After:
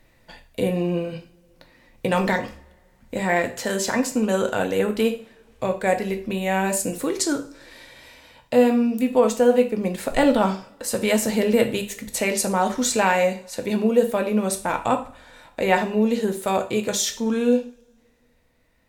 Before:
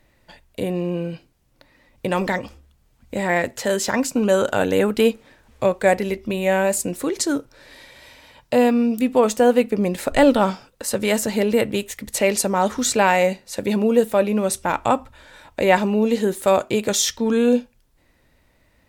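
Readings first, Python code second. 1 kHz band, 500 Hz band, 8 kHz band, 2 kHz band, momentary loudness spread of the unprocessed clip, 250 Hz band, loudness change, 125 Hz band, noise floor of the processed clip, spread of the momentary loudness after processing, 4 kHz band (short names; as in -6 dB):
-2.0 dB, -2.5 dB, -2.0 dB, -2.0 dB, 10 LU, -1.5 dB, -2.0 dB, -1.5 dB, -60 dBFS, 10 LU, -2.5 dB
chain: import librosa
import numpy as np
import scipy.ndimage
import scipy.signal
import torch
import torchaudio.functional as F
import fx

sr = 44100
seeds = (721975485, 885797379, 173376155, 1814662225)

y = fx.rider(x, sr, range_db=10, speed_s=2.0)
y = fx.rev_double_slope(y, sr, seeds[0], early_s=0.38, late_s=2.1, knee_db=-28, drr_db=5.0)
y = F.gain(torch.from_numpy(y), -3.5).numpy()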